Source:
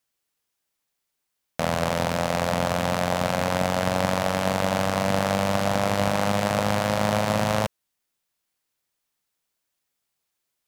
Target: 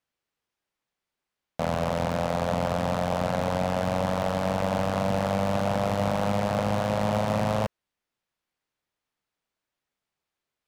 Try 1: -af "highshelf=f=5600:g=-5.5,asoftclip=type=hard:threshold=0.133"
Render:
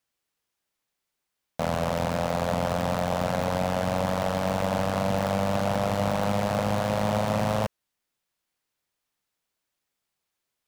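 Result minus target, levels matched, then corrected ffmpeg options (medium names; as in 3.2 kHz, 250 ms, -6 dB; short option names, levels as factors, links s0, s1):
8 kHz band +2.5 dB
-af "highshelf=f=5600:g=-17,asoftclip=type=hard:threshold=0.133"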